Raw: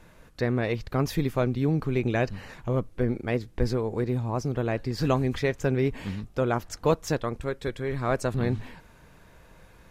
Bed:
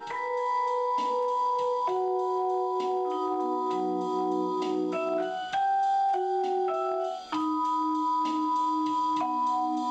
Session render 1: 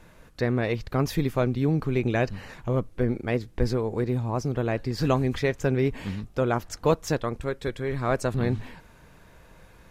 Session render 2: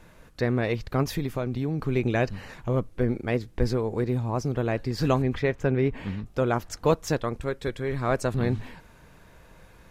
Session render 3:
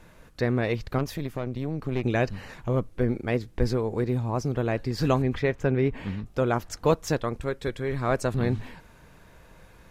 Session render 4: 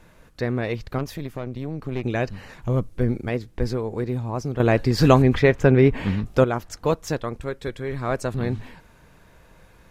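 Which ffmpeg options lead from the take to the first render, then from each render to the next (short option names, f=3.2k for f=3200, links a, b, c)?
-af "volume=1dB"
-filter_complex "[0:a]asettb=1/sr,asplit=3[a][b][c];[a]atrim=end=1.034[d];[b]atrim=start=1.03:end=1.87,asetpts=PTS-STARTPTS,afade=t=in:d=0.004:c=qsin,afade=t=out:st=0.836:d=0.004:c=qsin,acompressor=threshold=-24dB:ratio=3:attack=3.2:release=140:knee=1:detection=peak[e];[c]atrim=start=1.866[f];[d][e]acrossfade=d=0.004:c1=hsin:c2=qsin[g];[g][f]acrossfade=d=0.004:c1=qsin:c2=hsin,asettb=1/sr,asplit=3[h][i][j];[h]atrim=end=5.224[k];[i]atrim=start=5.22:end=6.26,asetpts=PTS-STARTPTS,afade=t=in:d=0.004:c=qsin,afade=t=out:st=1.036:d=0.004:c=qsin,bass=f=250:g=0,treble=f=4k:g=-11[l];[j]atrim=start=6.256[m];[k][l]acrossfade=d=0.004:c1=hsin:c2=qsin[n];[n][m]acrossfade=d=0.004:c1=qsin:c2=hsin"
-filter_complex "[0:a]asettb=1/sr,asplit=3[a][b][c];[a]atrim=end=0.984[d];[b]atrim=start=0.98:end=2.04,asetpts=PTS-STARTPTS,afade=t=in:d=0.004:c=qsin,afade=t=out:st=1.056:d=0.004:c=qsin,aeval=exprs='(tanh(10*val(0)+0.75)-tanh(0.75))/10':c=same[e];[c]atrim=start=2.036[f];[d][e]acrossfade=d=0.004:c1=hsin:c2=qsin[g];[g][f]acrossfade=d=0.004:c1=qsin:c2=hsin"
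-filter_complex "[0:a]asettb=1/sr,asplit=3[a][b][c];[a]atrim=end=2.624[d];[b]atrim=start=2.62:end=3.29,asetpts=PTS-STARTPTS,afade=t=in:d=0.004:c=qsin,afade=t=out:st=0.666:d=0.004:c=qsin,bass=f=250:g=5,treble=f=4k:g=5[e];[c]atrim=start=3.286[f];[d][e]acrossfade=d=0.004:c1=hsin:c2=qsin[g];[g][f]acrossfade=d=0.004:c1=qsin:c2=hsin,asplit=3[h][i][j];[h]atrim=end=4.602[k];[i]atrim=start=4.598:end=6.442,asetpts=PTS-STARTPTS,volume=8.5dB[l];[j]atrim=start=6.438[m];[k][l]acrossfade=d=0.004:c1=hsin:c2=hsin[n];[n][m]acrossfade=d=0.004:c1=hsin:c2=hsin"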